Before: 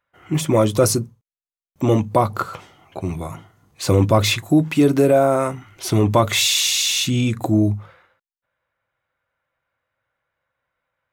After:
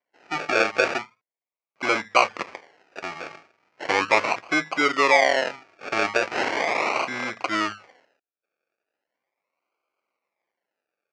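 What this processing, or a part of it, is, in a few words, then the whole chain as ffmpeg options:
circuit-bent sampling toy: -af "acrusher=samples=34:mix=1:aa=0.000001:lfo=1:lforange=20.4:lforate=0.38,highpass=570,equalizer=frequency=1200:width_type=q:width=4:gain=5,equalizer=frequency=2300:width_type=q:width=4:gain=9,equalizer=frequency=3600:width_type=q:width=4:gain=-7,lowpass=frequency=5600:width=0.5412,lowpass=frequency=5600:width=1.3066,volume=-1.5dB"

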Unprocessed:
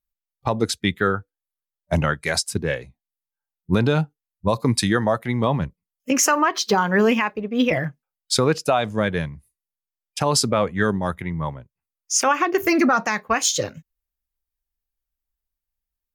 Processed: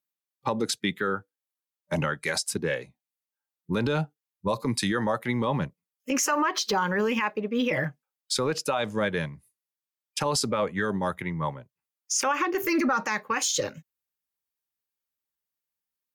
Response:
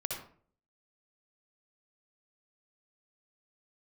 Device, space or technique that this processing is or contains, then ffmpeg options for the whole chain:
PA system with an anti-feedback notch: -af "highpass=frequency=140:width=0.5412,highpass=frequency=140:width=1.3066,asuperstop=centerf=690:order=12:qfactor=7.2,alimiter=limit=-16dB:level=0:latency=1:release=62,asubboost=boost=6:cutoff=65"

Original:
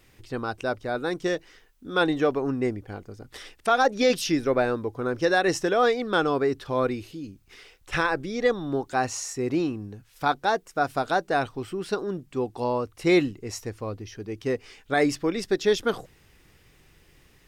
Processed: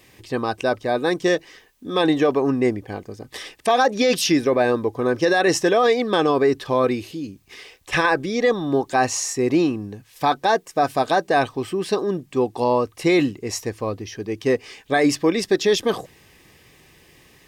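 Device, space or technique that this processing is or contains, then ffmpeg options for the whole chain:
PA system with an anti-feedback notch: -af "highpass=frequency=150:poles=1,asuperstop=centerf=1400:order=12:qfactor=7.2,alimiter=limit=-17dB:level=0:latency=1:release=11,volume=8dB"

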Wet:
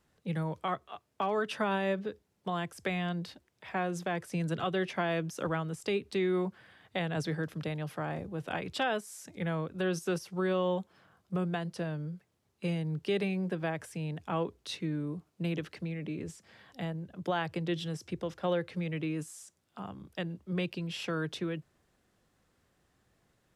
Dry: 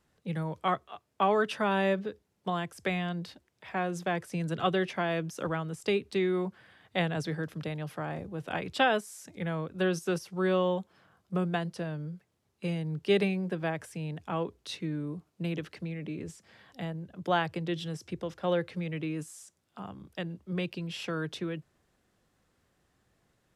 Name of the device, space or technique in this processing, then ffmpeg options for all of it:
clipper into limiter: -af "asoftclip=type=hard:threshold=-15dB,alimiter=limit=-21.5dB:level=0:latency=1:release=195"

